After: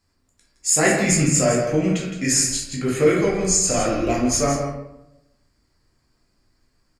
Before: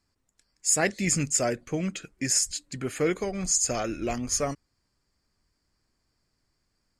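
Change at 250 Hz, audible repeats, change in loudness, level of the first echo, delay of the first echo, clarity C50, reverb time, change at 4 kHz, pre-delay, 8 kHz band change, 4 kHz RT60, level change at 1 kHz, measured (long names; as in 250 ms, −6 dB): +10.0 dB, 1, +7.5 dB, −8.5 dB, 164 ms, 1.5 dB, 0.85 s, +6.0 dB, 9 ms, +6.0 dB, 0.55 s, +8.5 dB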